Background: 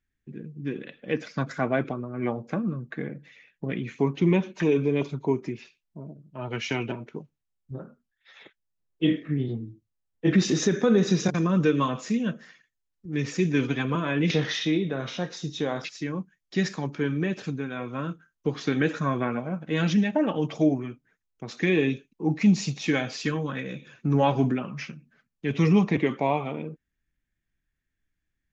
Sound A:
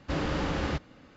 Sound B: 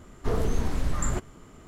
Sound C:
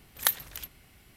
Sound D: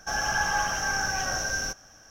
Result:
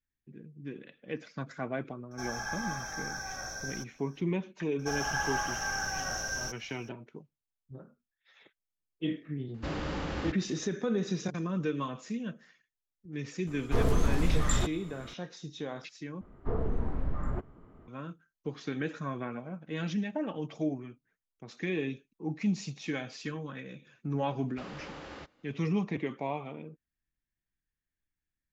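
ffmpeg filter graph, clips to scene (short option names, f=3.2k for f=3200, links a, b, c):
-filter_complex "[4:a]asplit=2[a][b];[1:a]asplit=2[c][d];[2:a]asplit=2[e][f];[0:a]volume=-10dB[g];[a]asuperstop=centerf=2900:order=20:qfactor=6.1[h];[f]lowpass=1.3k[i];[d]bass=f=250:g=-10,treble=f=4k:g=0[j];[g]asplit=2[k][l];[k]atrim=end=16.214[m];[i]atrim=end=1.67,asetpts=PTS-STARTPTS,volume=-5dB[n];[l]atrim=start=17.876[o];[h]atrim=end=2.1,asetpts=PTS-STARTPTS,volume=-11dB,afade=t=in:d=0.004:c=hsin,afade=t=out:st=2.096:d=0.004:c=hsin,adelay=2110[p];[b]atrim=end=2.1,asetpts=PTS-STARTPTS,volume=-6dB,afade=t=in:d=0.004:c=hsin,afade=t=out:st=2.096:d=0.004:c=hsin,adelay=4790[q];[c]atrim=end=1.16,asetpts=PTS-STARTPTS,volume=-5dB,afade=t=in:d=0.004:c=hsin,afade=t=out:st=1.156:d=0.004:c=hsin,adelay=420714S[r];[e]atrim=end=1.67,asetpts=PTS-STARTPTS,volume=-0.5dB,afade=t=in:d=0.004:c=hsin,afade=t=out:st=1.666:d=0.004:c=hsin,adelay=13470[s];[j]atrim=end=1.16,asetpts=PTS-STARTPTS,volume=-12dB,afade=t=in:d=0.004:c=hsin,afade=t=out:st=1.156:d=0.004:c=hsin,adelay=24480[t];[m][n]acrossfade=d=0.004:c1=hsin:c2=hsin[u];[u][o]acrossfade=d=0.004:c1=hsin:c2=hsin[v];[v][p][q][r][s][t]amix=inputs=6:normalize=0"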